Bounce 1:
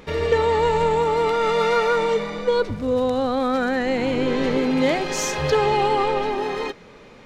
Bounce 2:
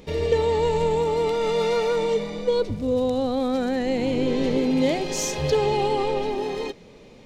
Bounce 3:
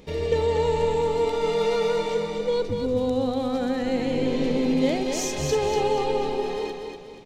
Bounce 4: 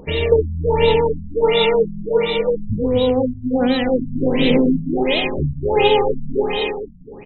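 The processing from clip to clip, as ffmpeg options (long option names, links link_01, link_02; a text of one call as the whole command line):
ffmpeg -i in.wav -af "equalizer=frequency=1400:width=1.1:gain=-12.5" out.wav
ffmpeg -i in.wav -af "aecho=1:1:241|482|723|964|1205:0.531|0.218|0.0892|0.0366|0.015,volume=-2.5dB" out.wav
ffmpeg -i in.wav -af "aexciter=amount=5.2:drive=2.9:freq=2200,aphaser=in_gain=1:out_gain=1:delay=2.7:decay=0.24:speed=1.1:type=triangular,afftfilt=real='re*lt(b*sr/1024,220*pow(4100/220,0.5+0.5*sin(2*PI*1.4*pts/sr)))':imag='im*lt(b*sr/1024,220*pow(4100/220,0.5+0.5*sin(2*PI*1.4*pts/sr)))':win_size=1024:overlap=0.75,volume=7.5dB" out.wav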